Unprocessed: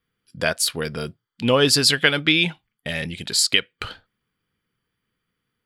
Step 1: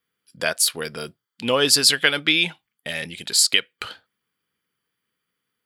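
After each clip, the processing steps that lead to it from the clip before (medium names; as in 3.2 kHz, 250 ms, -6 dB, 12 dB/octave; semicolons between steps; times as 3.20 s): high-pass 330 Hz 6 dB/octave; treble shelf 6.7 kHz +7 dB; trim -1 dB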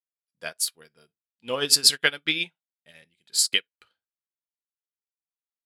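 gated-style reverb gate 90 ms falling, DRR 11 dB; upward expansion 2.5:1, over -36 dBFS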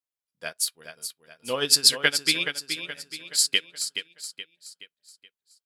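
feedback delay 424 ms, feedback 43%, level -8.5 dB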